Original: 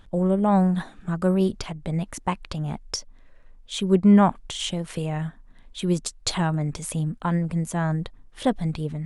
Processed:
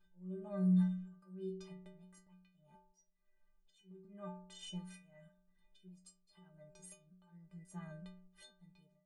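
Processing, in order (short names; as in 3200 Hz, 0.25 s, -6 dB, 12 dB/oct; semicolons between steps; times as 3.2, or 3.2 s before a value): ending faded out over 0.64 s; auto swell 0.69 s; metallic resonator 180 Hz, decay 0.78 s, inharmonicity 0.03; gain -2.5 dB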